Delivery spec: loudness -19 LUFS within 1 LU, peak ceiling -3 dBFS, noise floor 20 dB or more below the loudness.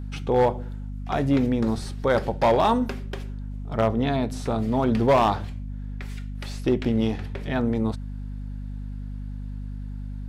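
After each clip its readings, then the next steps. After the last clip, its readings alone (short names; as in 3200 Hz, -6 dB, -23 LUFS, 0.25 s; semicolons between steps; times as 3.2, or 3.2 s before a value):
clipped 0.6%; flat tops at -13.0 dBFS; hum 50 Hz; harmonics up to 250 Hz; hum level -30 dBFS; loudness -24.5 LUFS; peak -13.0 dBFS; loudness target -19.0 LUFS
-> clip repair -13 dBFS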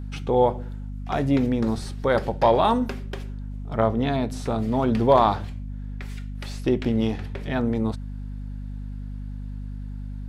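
clipped 0.0%; hum 50 Hz; harmonics up to 250 Hz; hum level -30 dBFS
-> notches 50/100/150/200/250 Hz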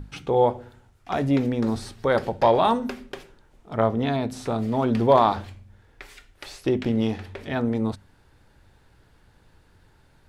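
hum none; loudness -23.5 LUFS; peak -5.5 dBFS; loudness target -19.0 LUFS
-> gain +4.5 dB; limiter -3 dBFS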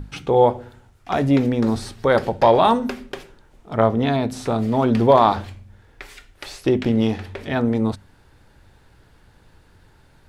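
loudness -19.5 LUFS; peak -3.0 dBFS; noise floor -54 dBFS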